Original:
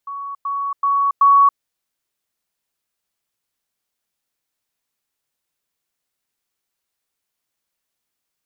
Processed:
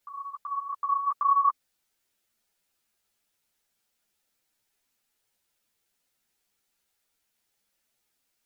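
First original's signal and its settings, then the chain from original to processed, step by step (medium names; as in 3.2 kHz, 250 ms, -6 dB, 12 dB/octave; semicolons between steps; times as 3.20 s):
level ladder 1.12 kHz -26 dBFS, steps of 6 dB, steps 4, 0.28 s 0.10 s
band-stop 1.1 kHz, Q 8.4; in parallel at -0.5 dB: peak limiter -23.5 dBFS; on the sum: three-phase chorus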